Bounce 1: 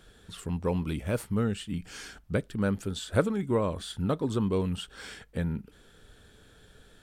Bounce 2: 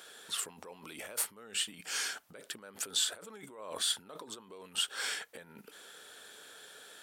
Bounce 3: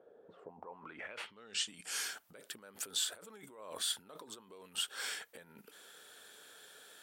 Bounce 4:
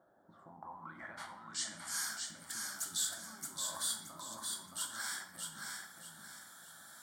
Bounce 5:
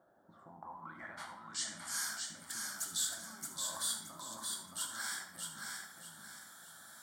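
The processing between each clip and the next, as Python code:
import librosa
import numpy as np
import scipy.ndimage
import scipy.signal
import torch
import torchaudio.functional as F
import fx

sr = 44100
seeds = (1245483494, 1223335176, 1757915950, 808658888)

y1 = fx.over_compress(x, sr, threshold_db=-37.0, ratio=-1.0)
y1 = scipy.signal.sosfilt(scipy.signal.butter(2, 570.0, 'highpass', fs=sr, output='sos'), y1)
y1 = fx.high_shelf(y1, sr, hz=6200.0, db=7.0)
y2 = fx.filter_sweep_lowpass(y1, sr, from_hz=530.0, to_hz=16000.0, start_s=0.38, end_s=2.11, q=2.7)
y2 = y2 * 10.0 ** (-4.5 / 20.0)
y3 = fx.fixed_phaser(y2, sr, hz=1100.0, stages=4)
y3 = fx.echo_feedback(y3, sr, ms=623, feedback_pct=33, wet_db=-4.0)
y3 = fx.room_shoebox(y3, sr, seeds[0], volume_m3=220.0, walls='mixed', distance_m=0.71)
y3 = y3 * 10.0 ** (2.0 / 20.0)
y4 = y3 + 10.0 ** (-12.5 / 20.0) * np.pad(y3, (int(76 * sr / 1000.0), 0))[:len(y3)]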